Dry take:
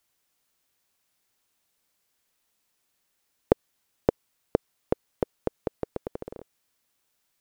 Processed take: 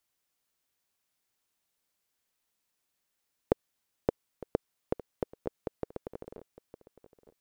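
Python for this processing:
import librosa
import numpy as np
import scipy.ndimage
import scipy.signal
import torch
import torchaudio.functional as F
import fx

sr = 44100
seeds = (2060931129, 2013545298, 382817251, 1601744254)

y = fx.echo_feedback(x, sr, ms=908, feedback_pct=38, wet_db=-18.0)
y = y * 10.0 ** (-6.5 / 20.0)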